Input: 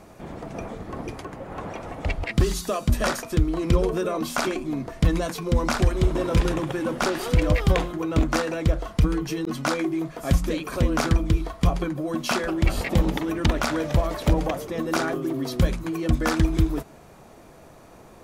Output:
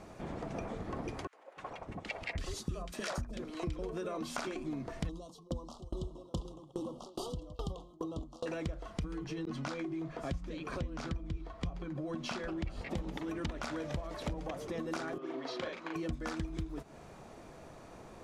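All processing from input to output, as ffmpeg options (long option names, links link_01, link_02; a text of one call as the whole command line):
ffmpeg -i in.wav -filter_complex "[0:a]asettb=1/sr,asplit=3[link_01][link_02][link_03];[link_01]atrim=end=1.274[link_04];[link_02]atrim=start=1.27:end=3.79,asetpts=PTS-STARTPTS,afade=type=in:duration=0.004:curve=qsin,afade=type=out:start_time=2.516:duration=0.004:curve=qsin,agate=range=-13dB:threshold=-34dB:ratio=16:release=100:detection=peak,acrossover=split=430|1400[link_05][link_06][link_07];[link_06]adelay=60[link_08];[link_05]adelay=300[link_09];[link_09][link_08][link_07]amix=inputs=3:normalize=0,atrim=end_sample=111132[link_10];[link_03]atrim=start=3.786[link_11];[link_04][link_10]acrossfade=duration=0.004:curve1=hsin:curve2=qsin[link_12];[link_12][link_11]acrossfade=duration=0.004:curve1=qsin:curve2=hsin,asettb=1/sr,asplit=3[link_13][link_14][link_15];[link_13]atrim=end=5.094[link_16];[link_14]atrim=start=5.09:end=8.46,asetpts=PTS-STARTPTS,afade=type=in:duration=0.004:curve=qsin,afade=type=out:start_time=3.366:duration=0.004:curve=qsin,acompressor=mode=upward:threshold=-21dB:ratio=2.5:attack=3.2:release=140:knee=2.83:detection=peak,asuperstop=centerf=1900:order=12:qfactor=1.1,aeval=exprs='val(0)*pow(10,-31*if(lt(mod(2.4*n/s,1),2*abs(2.4)/1000),1-mod(2.4*n/s,1)/(2*abs(2.4)/1000),(mod(2.4*n/s,1)-2*abs(2.4)/1000)/(1-2*abs(2.4)/1000))/20)':channel_layout=same[link_17];[link_15]atrim=start=8.456[link_18];[link_16][link_17]acrossfade=duration=0.004:curve1=hsin:curve2=qsin[link_19];[link_19][link_18]acrossfade=duration=0.004:curve1=qsin:curve2=hsin,asettb=1/sr,asplit=3[link_20][link_21][link_22];[link_20]atrim=end=9.244[link_23];[link_21]atrim=start=9.24:end=12.91,asetpts=PTS-STARTPTS,afade=type=in:duration=0.004:curve=qsin,afade=type=out:start_time=3.666:duration=0.004:curve=qsin,aemphasis=mode=reproduction:type=50fm,acrossover=split=190|3000[link_24][link_25][link_26];[link_25]acompressor=threshold=-32dB:ratio=2:attack=3.2:release=140:knee=2.83:detection=peak[link_27];[link_24][link_27][link_26]amix=inputs=3:normalize=0[link_28];[link_22]atrim=start=12.906[link_29];[link_23][link_28]acrossfade=duration=0.004:curve1=hsin:curve2=qsin[link_30];[link_30][link_29]acrossfade=duration=0.004:curve1=qsin:curve2=hsin,asettb=1/sr,asplit=3[link_31][link_32][link_33];[link_31]atrim=end=15.184[link_34];[link_32]atrim=start=15.18:end=15.96,asetpts=PTS-STARTPTS,afade=type=in:duration=0.004:curve=qsin,afade=type=out:start_time=0.776:duration=0.004:curve=qsin,highpass=500,lowpass=3600,asplit=2[link_35][link_36];[link_36]adelay=38,volume=-2dB[link_37];[link_35][link_37]amix=inputs=2:normalize=0,atrim=end_sample=34398[link_38];[link_33]atrim=start=15.956[link_39];[link_34][link_38]acrossfade=duration=0.004:curve1=hsin:curve2=qsin[link_40];[link_40][link_39]acrossfade=duration=0.004:curve1=qsin:curve2=hsin,acompressor=threshold=-32dB:ratio=6,lowpass=8400,volume=-3.5dB" out.wav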